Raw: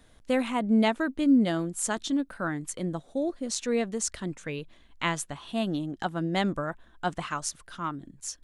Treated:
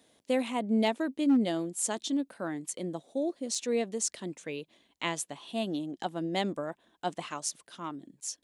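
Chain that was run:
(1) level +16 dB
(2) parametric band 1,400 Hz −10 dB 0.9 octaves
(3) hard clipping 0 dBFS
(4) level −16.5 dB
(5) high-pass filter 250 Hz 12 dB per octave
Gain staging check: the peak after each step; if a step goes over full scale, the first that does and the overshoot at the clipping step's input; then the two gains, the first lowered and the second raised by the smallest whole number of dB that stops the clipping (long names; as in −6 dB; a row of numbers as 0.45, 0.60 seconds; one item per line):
+4.5, +4.0, 0.0, −16.5, −14.5 dBFS
step 1, 4.0 dB
step 1 +12 dB, step 4 −12.5 dB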